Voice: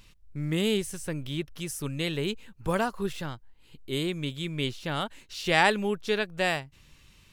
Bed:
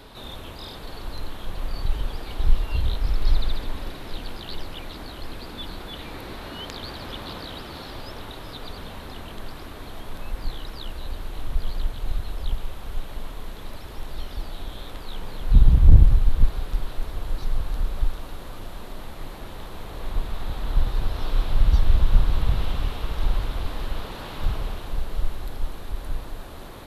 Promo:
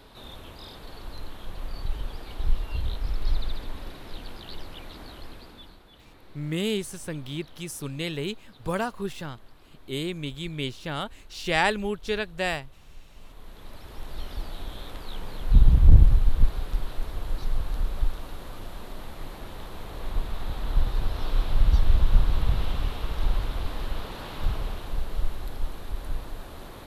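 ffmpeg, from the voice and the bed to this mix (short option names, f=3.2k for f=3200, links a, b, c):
-filter_complex "[0:a]adelay=6000,volume=-1dB[a];[1:a]volume=10dB,afade=t=out:st=5.13:d=0.68:silence=0.251189,afade=t=in:st=13.12:d=1.18:silence=0.16788[b];[a][b]amix=inputs=2:normalize=0"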